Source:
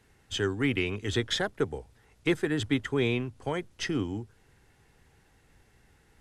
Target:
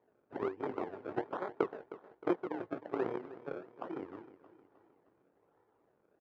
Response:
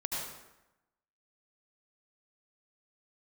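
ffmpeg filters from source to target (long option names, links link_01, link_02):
-af "aecho=1:1:2.2:0.57,acompressor=threshold=-49dB:ratio=1.5,tremolo=f=33:d=0.519,aeval=exprs='0.0668*(cos(1*acos(clip(val(0)/0.0668,-1,1)))-cos(1*PI/2))+0.0188*(cos(3*acos(clip(val(0)/0.0668,-1,1)))-cos(3*PI/2))':channel_layout=same,flanger=delay=16.5:depth=5.2:speed=0.39,acrusher=samples=31:mix=1:aa=0.000001:lfo=1:lforange=31:lforate=1.2,asuperpass=centerf=600:order=4:qfactor=0.5,aecho=1:1:311|622|933|1244:0.168|0.0806|0.0387|0.0186,volume=15dB"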